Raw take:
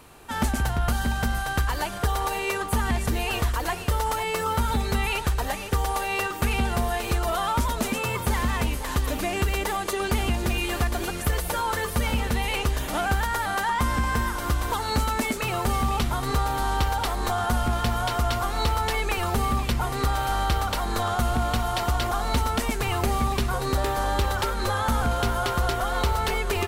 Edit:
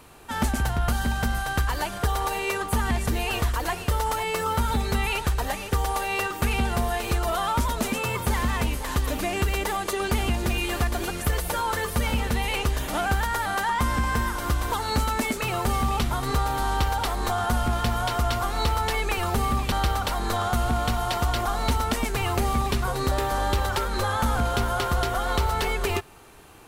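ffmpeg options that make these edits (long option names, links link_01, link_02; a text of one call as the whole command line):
ffmpeg -i in.wav -filter_complex "[0:a]asplit=2[link_01][link_02];[link_01]atrim=end=19.722[link_03];[link_02]atrim=start=20.378[link_04];[link_03][link_04]acrossfade=duration=0.004:curve1=hsin:curve2=hsin" out.wav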